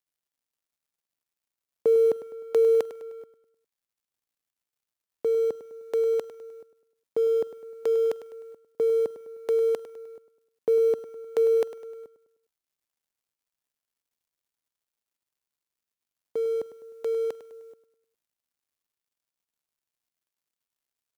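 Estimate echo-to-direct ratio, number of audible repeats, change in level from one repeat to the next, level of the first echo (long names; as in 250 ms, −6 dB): −13.0 dB, 4, −7.0 dB, −14.0 dB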